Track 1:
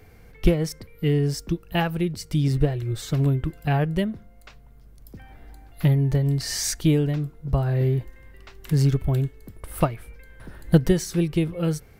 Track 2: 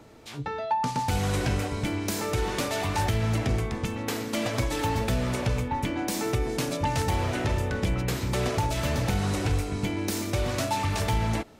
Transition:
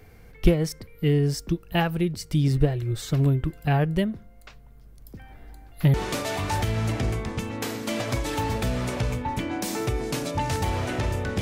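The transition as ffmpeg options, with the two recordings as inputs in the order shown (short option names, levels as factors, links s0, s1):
-filter_complex "[0:a]apad=whole_dur=11.41,atrim=end=11.41,atrim=end=5.942[s0];[1:a]atrim=start=2.398:end=7.87[s1];[s0][s1]acrossfade=d=0.004:c1=hsin:c2=hsin"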